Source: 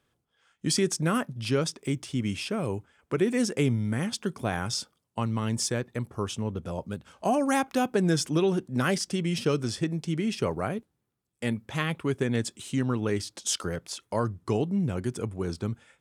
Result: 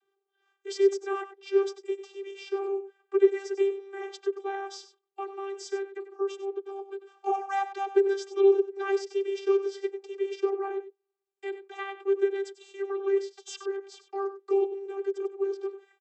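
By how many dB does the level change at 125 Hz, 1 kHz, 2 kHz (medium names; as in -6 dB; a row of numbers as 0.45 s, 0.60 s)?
under -40 dB, -1.0 dB, -6.0 dB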